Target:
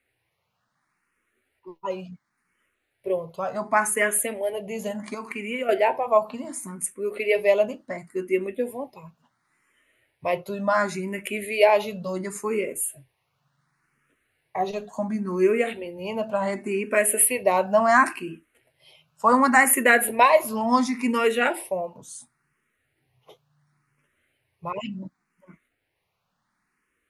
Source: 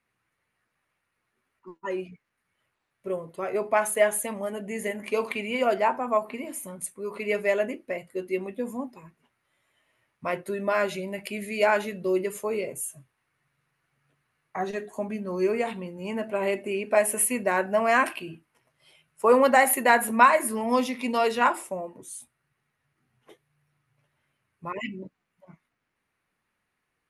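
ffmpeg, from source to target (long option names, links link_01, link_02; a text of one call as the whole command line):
ffmpeg -i in.wav -filter_complex "[0:a]asettb=1/sr,asplit=3[link_01][link_02][link_03];[link_01]atrim=end=5.144[link_04];[link_02]atrim=start=5.14:end=5.69,asetpts=PTS-STARTPTS,afade=type=in:duration=0.004:curve=qsin,afade=type=out:start_time=0.546:duration=0.004:curve=qsin,acompressor=threshold=-33dB:ratio=3[link_05];[link_03]atrim=start=5.686[link_06];[link_04][link_05]acrossfade=duration=0.004:curve1=hsin:curve2=qsin[link_07];[link_07][link_06]acrossfade=duration=0.004:curve1=qsin:curve2=hsin,asplit=2[link_08][link_09];[link_09]afreqshift=0.7[link_10];[link_08][link_10]amix=inputs=2:normalize=1,volume=6dB" out.wav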